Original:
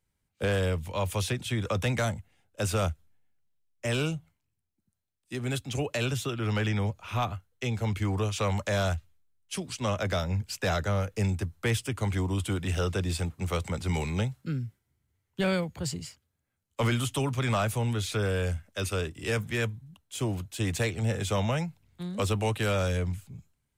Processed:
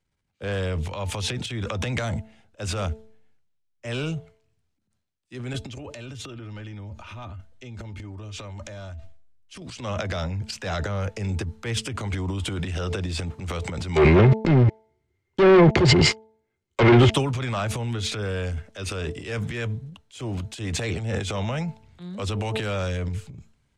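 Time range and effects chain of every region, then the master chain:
0:05.53–0:09.62: low-shelf EQ 210 Hz +8 dB + comb filter 3.3 ms, depth 43% + downward compressor 12 to 1, threshold −34 dBFS
0:13.96–0:17.13: hollow resonant body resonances 370/2,100 Hz, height 17 dB, ringing for 70 ms + leveller curve on the samples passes 5 + treble cut that deepens with the level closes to 2,300 Hz, closed at −11.5 dBFS
whole clip: low-pass filter 6,300 Hz 12 dB per octave; hum removal 219.9 Hz, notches 4; transient designer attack −5 dB, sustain +11 dB

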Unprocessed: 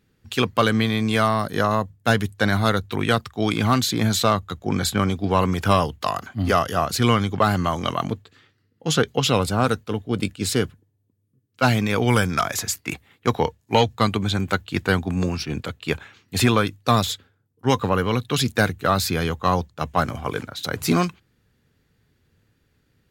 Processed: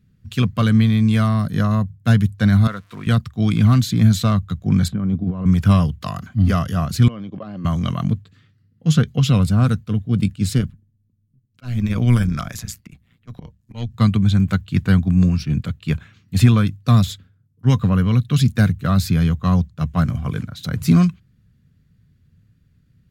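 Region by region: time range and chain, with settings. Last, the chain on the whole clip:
0:02.67–0:03.07: spike at every zero crossing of −21 dBFS + resonant band-pass 1,000 Hz, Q 0.99 + notch filter 800 Hz, Q 5.4
0:04.88–0:05.46: resonant band-pass 360 Hz, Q 0.57 + compressor whose output falls as the input rises −27 dBFS
0:07.08–0:07.65: output level in coarse steps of 15 dB + loudspeaker in its box 260–4,100 Hz, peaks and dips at 320 Hz +6 dB, 560 Hz +10 dB, 1,400 Hz −8 dB, 2,000 Hz −7 dB, 3,800 Hz −8 dB
0:10.58–0:13.94: volume swells 270 ms + amplitude modulation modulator 120 Hz, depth 60%
whole clip: low shelf with overshoot 260 Hz +12.5 dB, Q 1.5; notch filter 860 Hz, Q 5.1; level −4.5 dB

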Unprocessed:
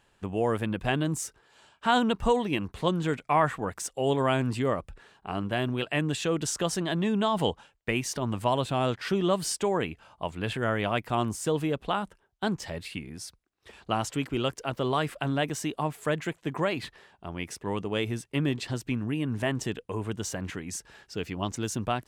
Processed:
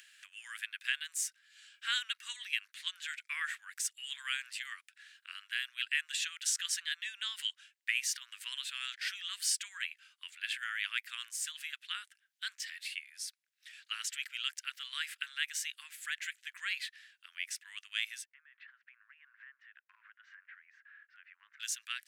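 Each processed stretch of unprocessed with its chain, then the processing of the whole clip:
0:18.25–0:21.60: low-pass filter 1,500 Hz 24 dB per octave + downward compressor 4 to 1, threshold −37 dBFS
whole clip: Butterworth high-pass 1,600 Hz 48 dB per octave; upward compression, threshold −50 dBFS

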